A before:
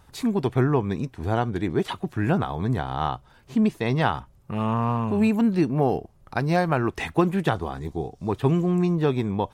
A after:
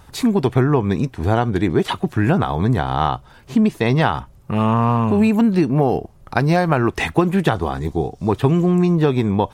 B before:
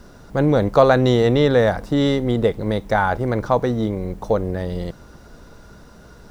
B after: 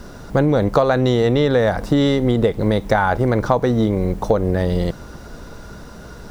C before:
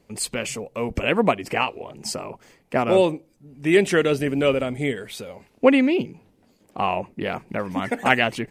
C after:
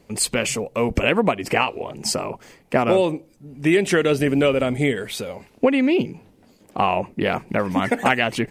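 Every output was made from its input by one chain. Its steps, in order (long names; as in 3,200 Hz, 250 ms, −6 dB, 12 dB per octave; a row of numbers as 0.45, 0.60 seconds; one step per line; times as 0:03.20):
downward compressor 6 to 1, threshold −20 dBFS
normalise the peak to −2 dBFS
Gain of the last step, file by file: +8.5, +7.5, +6.0 decibels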